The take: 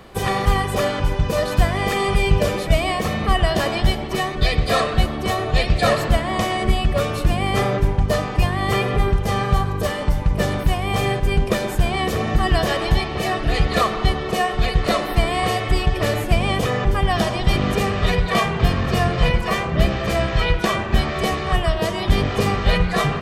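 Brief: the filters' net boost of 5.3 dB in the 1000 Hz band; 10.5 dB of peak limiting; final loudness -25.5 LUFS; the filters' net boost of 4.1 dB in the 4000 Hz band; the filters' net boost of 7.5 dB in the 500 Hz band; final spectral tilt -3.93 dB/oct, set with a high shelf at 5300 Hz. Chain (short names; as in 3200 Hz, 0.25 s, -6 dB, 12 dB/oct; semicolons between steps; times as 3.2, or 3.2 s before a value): bell 500 Hz +8.5 dB; bell 1000 Hz +3.5 dB; bell 4000 Hz +7.5 dB; high shelf 5300 Hz -6 dB; gain -6 dB; limiter -16 dBFS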